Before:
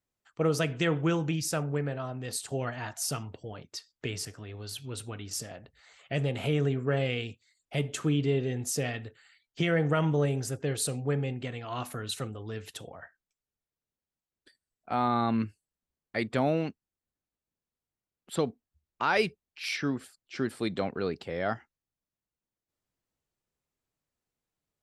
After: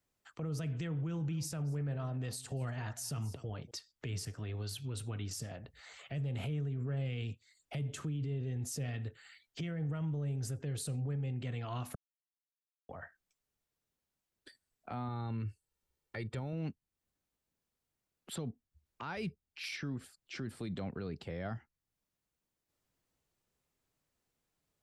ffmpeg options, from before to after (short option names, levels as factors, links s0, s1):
-filter_complex "[0:a]asettb=1/sr,asplit=3[s0][s1][s2];[s0]atrim=end=0.934[s3];[s1]atrim=start=0.93:end=3.71,asetpts=PTS-STARTPTS,afade=t=in:d=0.004:c=qsin,afade=t=out:st=2.776:d=0.004:c=qsin,aecho=1:1:238:0.0891,atrim=end_sample=122598[s4];[s2]atrim=start=3.706[s5];[s3][s4]acrossfade=d=0.004:c1=hsin:c2=qsin[s6];[s6][s5]acrossfade=d=0.004:c1=qsin:c2=hsin,asettb=1/sr,asplit=3[s7][s8][s9];[s7]atrim=end=15.084[s10];[s8]atrim=start=15.08:end=16.53,asetpts=PTS-STARTPTS,afade=t=in:d=0.004:c=qsin,afade=t=out:st=1.446:d=0.004:c=qsin,aecho=1:1:2.2:0.5,atrim=end_sample=63945[s11];[s9]atrim=start=16.526[s12];[s10][s11]acrossfade=d=0.004:c1=hsin:c2=qsin[s13];[s13][s12]acrossfade=d=0.004:c1=qsin:c2=hsin,asplit=3[s14][s15][s16];[s14]atrim=end=11.95,asetpts=PTS-STARTPTS,afade=t=out:st=11.946:d=0.004:c=hsin[s17];[s15]atrim=start=11.95:end=12.89,asetpts=PTS-STARTPTS,volume=0[s18];[s16]atrim=start=12.89,asetpts=PTS-STARTPTS,afade=t=in:d=0.004:c=hsin[s19];[s17][s18][s19]concat=n=3:v=0:a=1,acrossover=split=180[s20][s21];[s21]acompressor=threshold=0.00224:ratio=2[s22];[s20][s22]amix=inputs=2:normalize=0,alimiter=level_in=3.55:limit=0.0631:level=0:latency=1:release=36,volume=0.282,volume=1.58"